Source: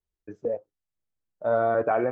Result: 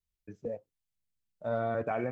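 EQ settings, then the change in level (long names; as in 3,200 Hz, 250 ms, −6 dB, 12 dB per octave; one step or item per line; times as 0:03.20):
flat-topped bell 690 Hz −9 dB 2.8 octaves
0.0 dB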